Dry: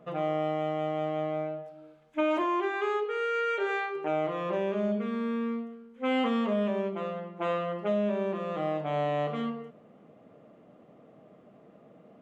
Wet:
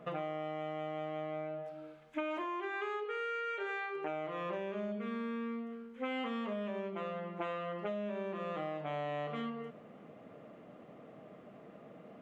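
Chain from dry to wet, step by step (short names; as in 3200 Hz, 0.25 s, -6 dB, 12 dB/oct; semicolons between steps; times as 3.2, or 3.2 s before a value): bell 2000 Hz +5 dB 1.7 oct; compressor 6:1, threshold -37 dBFS, peak gain reduction 13.5 dB; gain +1 dB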